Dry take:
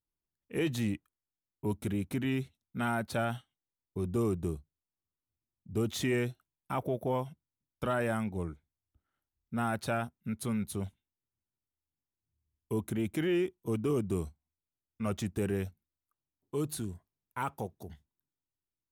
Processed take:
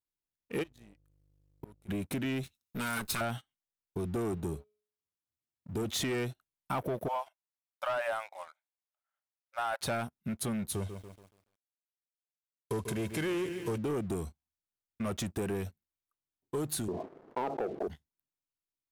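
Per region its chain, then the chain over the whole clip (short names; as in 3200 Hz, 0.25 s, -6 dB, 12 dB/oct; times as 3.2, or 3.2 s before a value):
0.62–1.88 flipped gate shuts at -36 dBFS, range -27 dB + buzz 50 Hz, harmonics 3, -63 dBFS -5 dB/oct
2.43–3.21 minimum comb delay 0.78 ms + compressor 2.5:1, threshold -38 dBFS + high shelf 2600 Hz +10.5 dB
4.32–5.85 HPF 60 Hz + de-hum 211.2 Hz, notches 19
7.08–9.81 brick-wall FIR high-pass 530 Hz + high shelf 4200 Hz -9.5 dB
10.75–13.78 CVSD 64 kbps + comb 1.9 ms, depth 43% + lo-fi delay 0.142 s, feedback 55%, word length 10-bit, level -12 dB
16.88–17.88 Butterworth band-pass 510 Hz, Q 1.2 + low shelf 490 Hz +12 dB + fast leveller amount 70%
whole clip: sample leveller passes 2; compressor, threshold -28 dBFS; low shelf 270 Hz -4 dB; gain -1 dB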